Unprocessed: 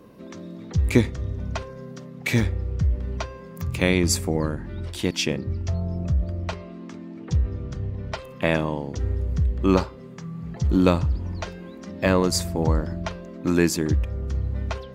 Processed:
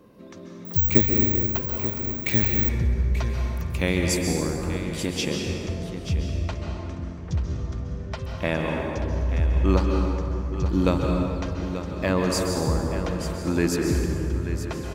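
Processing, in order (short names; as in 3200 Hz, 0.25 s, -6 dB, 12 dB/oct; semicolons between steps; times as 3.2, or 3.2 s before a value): on a send: echo 0.885 s -10.5 dB; on the sum: plate-style reverb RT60 2.4 s, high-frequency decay 0.6×, pre-delay 0.12 s, DRR 1 dB; 0.65–2.69 careless resampling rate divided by 2×, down filtered, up zero stuff; gain -4 dB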